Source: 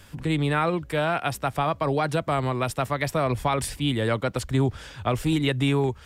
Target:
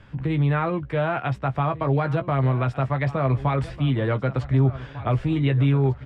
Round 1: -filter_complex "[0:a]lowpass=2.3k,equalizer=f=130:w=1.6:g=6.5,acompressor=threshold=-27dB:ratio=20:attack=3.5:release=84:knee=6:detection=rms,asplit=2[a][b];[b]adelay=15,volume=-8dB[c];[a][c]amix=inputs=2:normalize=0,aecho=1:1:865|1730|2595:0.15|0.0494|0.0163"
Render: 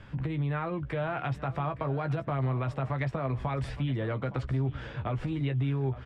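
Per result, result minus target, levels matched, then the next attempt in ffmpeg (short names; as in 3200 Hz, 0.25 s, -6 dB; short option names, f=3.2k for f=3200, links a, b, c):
compressor: peak gain reduction +11 dB; echo 0.633 s early
-filter_complex "[0:a]lowpass=2.3k,equalizer=f=130:w=1.6:g=6.5,acompressor=threshold=-15dB:ratio=20:attack=3.5:release=84:knee=6:detection=rms,asplit=2[a][b];[b]adelay=15,volume=-8dB[c];[a][c]amix=inputs=2:normalize=0,aecho=1:1:865|1730|2595:0.15|0.0494|0.0163"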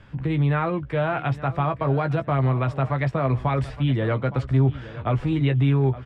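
echo 0.633 s early
-filter_complex "[0:a]lowpass=2.3k,equalizer=f=130:w=1.6:g=6.5,acompressor=threshold=-15dB:ratio=20:attack=3.5:release=84:knee=6:detection=rms,asplit=2[a][b];[b]adelay=15,volume=-8dB[c];[a][c]amix=inputs=2:normalize=0,aecho=1:1:1498|2996|4494:0.15|0.0494|0.0163"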